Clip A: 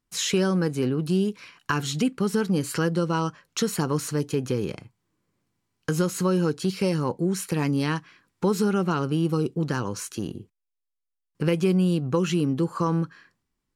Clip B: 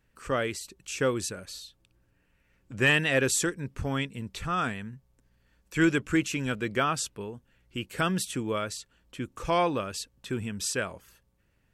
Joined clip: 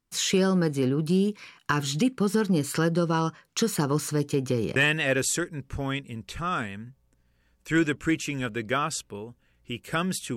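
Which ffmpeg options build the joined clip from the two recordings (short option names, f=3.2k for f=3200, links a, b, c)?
-filter_complex "[0:a]apad=whole_dur=10.36,atrim=end=10.36,atrim=end=4.762[a];[1:a]atrim=start=2.818:end=8.42[b];[a][b]acrossfade=d=0.004:c1=hsin:c2=hsin"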